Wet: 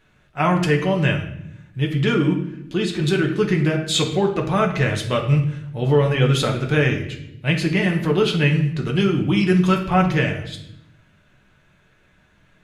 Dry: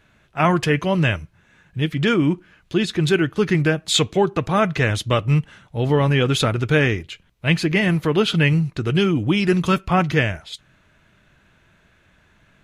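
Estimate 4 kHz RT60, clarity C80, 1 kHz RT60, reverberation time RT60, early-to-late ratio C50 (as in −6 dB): 0.65 s, 11.5 dB, 0.70 s, 0.80 s, 8.5 dB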